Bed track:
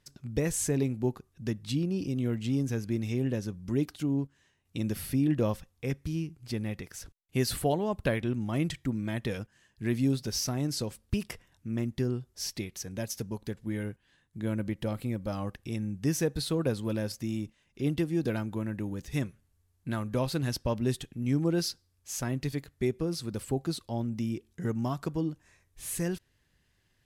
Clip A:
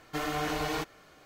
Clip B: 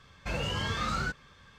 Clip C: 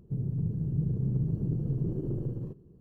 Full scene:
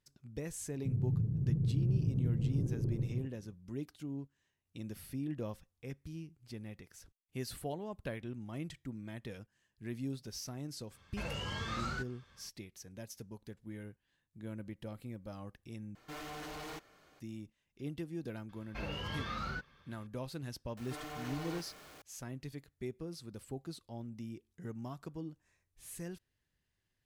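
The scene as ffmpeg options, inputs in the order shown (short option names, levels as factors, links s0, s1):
-filter_complex "[2:a]asplit=2[s0][s1];[1:a]asplit=2[s2][s3];[0:a]volume=0.237[s4];[3:a]equalizer=f=110:t=o:w=0.77:g=8.5[s5];[s2]asoftclip=type=hard:threshold=0.0178[s6];[s1]equalizer=f=7700:w=2:g=-13.5[s7];[s3]aeval=exprs='val(0)+0.5*0.0168*sgn(val(0))':c=same[s8];[s4]asplit=2[s9][s10];[s9]atrim=end=15.954[s11];[s6]atrim=end=1.25,asetpts=PTS-STARTPTS,volume=0.398[s12];[s10]atrim=start=17.196[s13];[s5]atrim=end=2.8,asetpts=PTS-STARTPTS,volume=0.422,afade=t=in:d=0.004:c=hsin,afade=t=out:st=2.796:d=0.004:c=hsin,adelay=740[s14];[s0]atrim=end=1.58,asetpts=PTS-STARTPTS,volume=0.422,afade=t=in:d=0.004:c=hsin,afade=t=out:st=1.576:d=0.004:c=hsin,adelay=10910[s15];[s7]atrim=end=1.58,asetpts=PTS-STARTPTS,volume=0.398,afade=t=in:d=0.004:c=hsin,afade=t=out:st=1.576:d=0.004:c=hsin,adelay=18490[s16];[s8]atrim=end=1.25,asetpts=PTS-STARTPTS,volume=0.178,afade=t=in:d=0.004:c=hsin,afade=t=out:st=1.246:d=0.004:c=hsin,adelay=20770[s17];[s11][s12]acrossfade=d=0.004:c1=hsin:c2=hsin[s18];[s18][s13]acrossfade=d=0.004:c1=hsin:c2=hsin[s19];[s19][s14][s15][s16][s17]amix=inputs=5:normalize=0"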